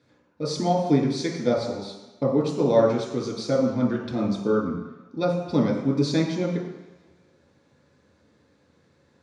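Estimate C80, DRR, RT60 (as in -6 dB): 5.5 dB, -4.5 dB, 1.1 s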